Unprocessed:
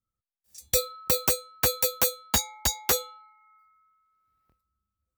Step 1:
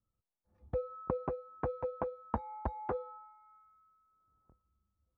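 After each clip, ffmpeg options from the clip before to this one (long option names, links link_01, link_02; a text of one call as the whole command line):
ffmpeg -i in.wav -af "acompressor=threshold=-29dB:ratio=10,lowpass=frequency=1100:width=0.5412,lowpass=frequency=1100:width=1.3066,volume=4.5dB" out.wav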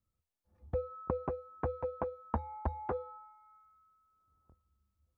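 ffmpeg -i in.wav -af "equalizer=frequency=78:width=6.1:gain=9" out.wav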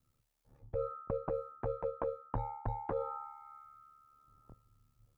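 ffmpeg -i in.wav -af "areverse,acompressor=threshold=-42dB:ratio=10,areverse,aeval=exprs='val(0)*sin(2*PI*36*n/s)':channel_layout=same,volume=11.5dB" out.wav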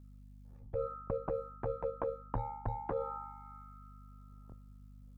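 ffmpeg -i in.wav -af "aeval=exprs='val(0)+0.00224*(sin(2*PI*50*n/s)+sin(2*PI*2*50*n/s)/2+sin(2*PI*3*50*n/s)/3+sin(2*PI*4*50*n/s)/4+sin(2*PI*5*50*n/s)/5)':channel_layout=same" out.wav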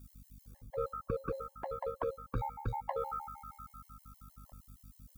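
ffmpeg -i in.wav -af "crystalizer=i=7.5:c=0,afftfilt=real='re*gt(sin(2*PI*6.4*pts/sr)*(1-2*mod(floor(b*sr/1024/550),2)),0)':imag='im*gt(sin(2*PI*6.4*pts/sr)*(1-2*mod(floor(b*sr/1024/550),2)),0)':win_size=1024:overlap=0.75,volume=1.5dB" out.wav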